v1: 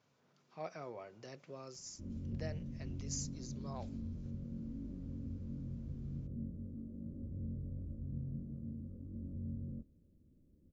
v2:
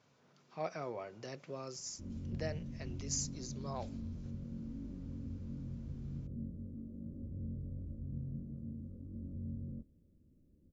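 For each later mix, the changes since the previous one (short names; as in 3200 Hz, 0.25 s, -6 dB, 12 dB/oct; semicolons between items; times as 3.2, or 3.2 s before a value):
speech +5.0 dB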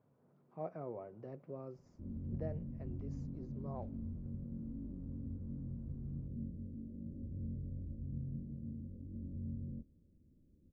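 master: add Bessel low-pass 590 Hz, order 2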